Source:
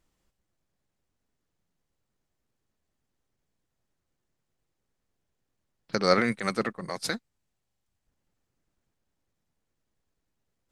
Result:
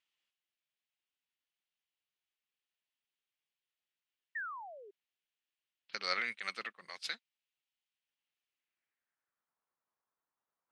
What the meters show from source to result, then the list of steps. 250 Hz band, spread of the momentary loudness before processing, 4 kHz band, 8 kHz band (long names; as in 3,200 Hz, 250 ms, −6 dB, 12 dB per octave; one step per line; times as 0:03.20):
−28.0 dB, 11 LU, −6.0 dB, −13.5 dB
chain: sound drawn into the spectrogram fall, 0:04.35–0:04.91, 380–1,900 Hz −30 dBFS
band-pass filter sweep 2,900 Hz → 1,100 Hz, 0:08.51–0:09.60
level +1 dB